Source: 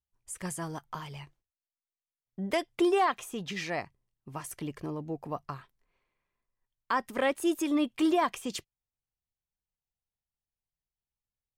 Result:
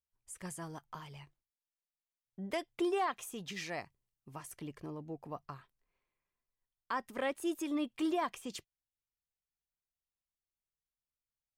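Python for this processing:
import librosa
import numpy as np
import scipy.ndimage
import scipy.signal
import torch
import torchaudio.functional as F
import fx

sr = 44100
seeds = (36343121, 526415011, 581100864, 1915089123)

y = fx.high_shelf(x, sr, hz=4900.0, db=7.5, at=(3.19, 4.36))
y = y * 10.0 ** (-7.5 / 20.0)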